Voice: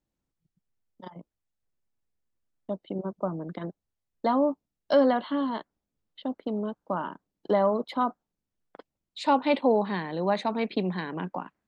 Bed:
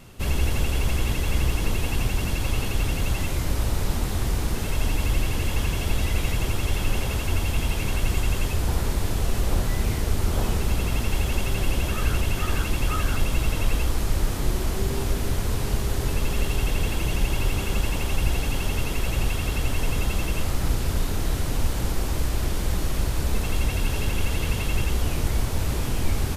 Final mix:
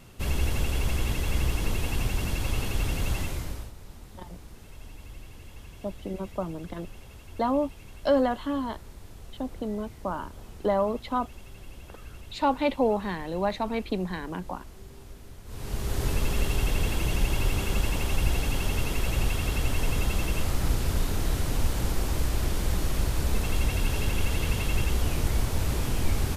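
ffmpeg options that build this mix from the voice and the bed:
-filter_complex "[0:a]adelay=3150,volume=-1.5dB[a];[1:a]volume=15.5dB,afade=t=out:st=3.16:d=0.56:silence=0.133352,afade=t=in:st=15.45:d=0.6:silence=0.112202[b];[a][b]amix=inputs=2:normalize=0"

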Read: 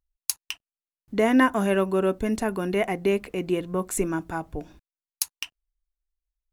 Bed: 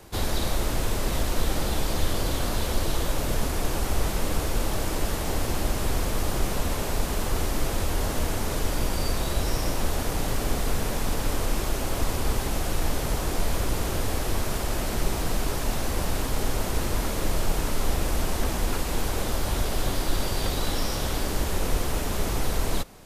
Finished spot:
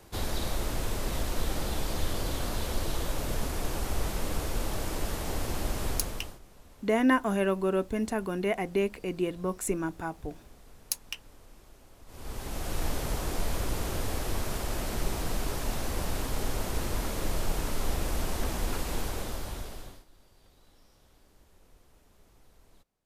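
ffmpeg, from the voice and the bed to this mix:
-filter_complex "[0:a]adelay=5700,volume=-4.5dB[a];[1:a]volume=17.5dB,afade=t=out:st=5.89:d=0.5:silence=0.0749894,afade=t=in:st=12.06:d=0.76:silence=0.0707946,afade=t=out:st=18.93:d=1.12:silence=0.0334965[b];[a][b]amix=inputs=2:normalize=0"

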